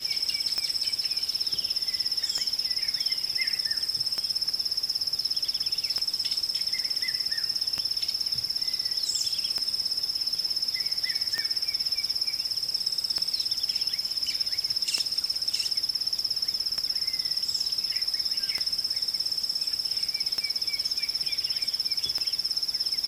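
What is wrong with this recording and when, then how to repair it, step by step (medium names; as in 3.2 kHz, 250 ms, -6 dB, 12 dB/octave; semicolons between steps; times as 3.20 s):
tick 33 1/3 rpm -14 dBFS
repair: de-click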